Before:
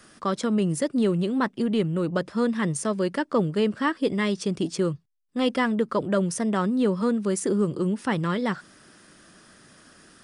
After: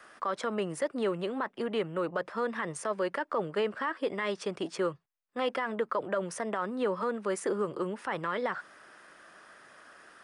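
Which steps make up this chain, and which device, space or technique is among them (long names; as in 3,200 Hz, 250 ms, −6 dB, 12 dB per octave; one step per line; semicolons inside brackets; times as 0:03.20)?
DJ mixer with the lows and highs turned down (three-way crossover with the lows and the highs turned down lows −20 dB, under 490 Hz, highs −14 dB, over 2,400 Hz; brickwall limiter −25 dBFS, peak gain reduction 11.5 dB)
level +4 dB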